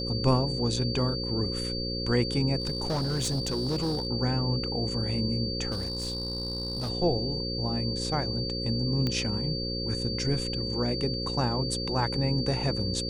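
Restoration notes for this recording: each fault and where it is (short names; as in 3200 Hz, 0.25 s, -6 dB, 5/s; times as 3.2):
buzz 60 Hz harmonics 9 -34 dBFS
tone 4600 Hz -33 dBFS
2.6–4.07 clipped -24.5 dBFS
5.71–6.9 clipped -28 dBFS
9.07 pop -16 dBFS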